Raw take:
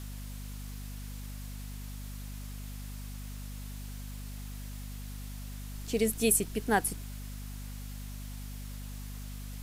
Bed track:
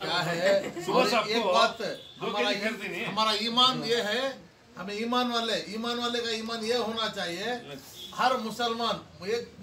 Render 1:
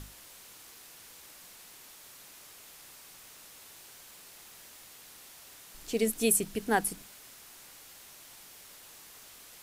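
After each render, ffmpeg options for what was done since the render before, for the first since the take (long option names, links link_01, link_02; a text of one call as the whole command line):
ffmpeg -i in.wav -af "bandreject=frequency=50:width_type=h:width=6,bandreject=frequency=100:width_type=h:width=6,bandreject=frequency=150:width_type=h:width=6,bandreject=frequency=200:width_type=h:width=6,bandreject=frequency=250:width_type=h:width=6" out.wav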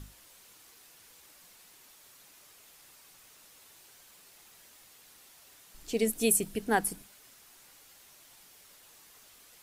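ffmpeg -i in.wav -af "afftdn=noise_reduction=6:noise_floor=-52" out.wav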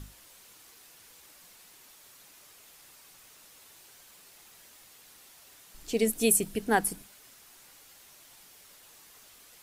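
ffmpeg -i in.wav -af "volume=2dB" out.wav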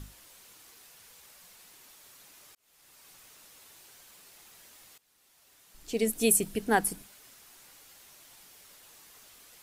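ffmpeg -i in.wav -filter_complex "[0:a]asettb=1/sr,asplit=3[link_01][link_02][link_03];[link_01]atrim=end=0.854[link_04];[link_02]atrim=start=0.85:end=1.57,asetpts=PTS-STARTPTS,afade=type=in:duration=0.004:curve=qsin,afade=type=out:start_time=0.716:duration=0.004:curve=qsin,equalizer=frequency=310:width_type=o:width=0.21:gain=-13.5[link_05];[link_03]atrim=start=1.566[link_06];[link_04][link_05]acrossfade=duration=0.004:curve1=hsin:curve2=qsin[link_07];[link_07][link_06]acrossfade=duration=0.004:curve1=qsin:curve2=hsin,asplit=3[link_08][link_09][link_10];[link_08]atrim=end=2.55,asetpts=PTS-STARTPTS,afade=type=out:start_time=2.546:duration=0.004:curve=hsin[link_11];[link_09]atrim=start=2.55:end=4.98,asetpts=PTS-STARTPTS,afade=type=in:duration=0.55,afade=type=out:start_time=2.426:duration=0.004:curve=hsin:silence=0.105925[link_12];[link_10]atrim=start=4.98,asetpts=PTS-STARTPTS,afade=type=in:duration=1.33:silence=0.105925[link_13];[link_11][link_12][link_13]concat=n=3:v=0:a=1" out.wav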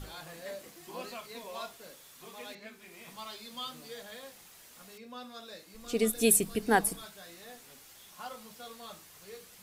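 ffmpeg -i in.wav -i bed.wav -filter_complex "[1:a]volume=-18.5dB[link_01];[0:a][link_01]amix=inputs=2:normalize=0" out.wav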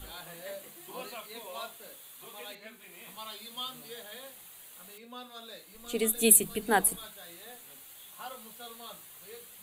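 ffmpeg -i in.wav -filter_complex "[0:a]acrossover=split=360|1700[link_01][link_02][link_03];[link_01]flanger=delay=16.5:depth=7.1:speed=0.34[link_04];[link_03]aexciter=amount=1.1:drive=3.4:freq=2900[link_05];[link_04][link_02][link_05]amix=inputs=3:normalize=0" out.wav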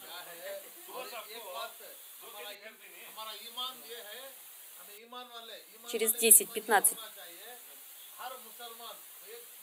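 ffmpeg -i in.wav -af "highpass=380" out.wav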